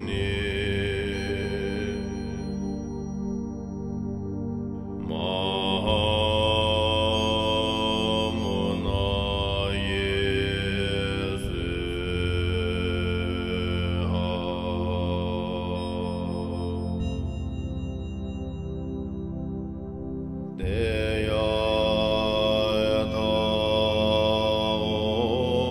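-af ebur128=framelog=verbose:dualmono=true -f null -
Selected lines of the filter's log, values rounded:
Integrated loudness:
  I:         -23.6 LUFS
  Threshold: -33.6 LUFS
Loudness range:
  LRA:         8.3 LU
  Threshold: -43.7 LUFS
  LRA low:   -28.8 LUFS
  LRA high:  -20.6 LUFS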